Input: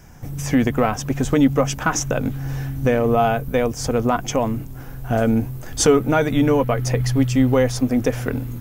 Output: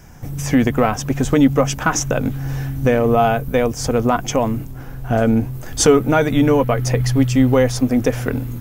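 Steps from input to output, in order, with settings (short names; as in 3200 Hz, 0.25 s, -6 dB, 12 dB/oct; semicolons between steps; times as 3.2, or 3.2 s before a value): 4.7–5.53 high shelf 4800 Hz -> 8000 Hz -5.5 dB; gain +2.5 dB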